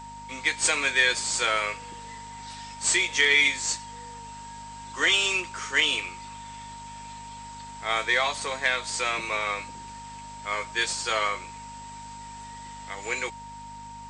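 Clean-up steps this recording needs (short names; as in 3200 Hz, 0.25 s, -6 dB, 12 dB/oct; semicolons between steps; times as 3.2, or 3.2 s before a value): de-hum 50.6 Hz, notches 5; notch 930 Hz, Q 30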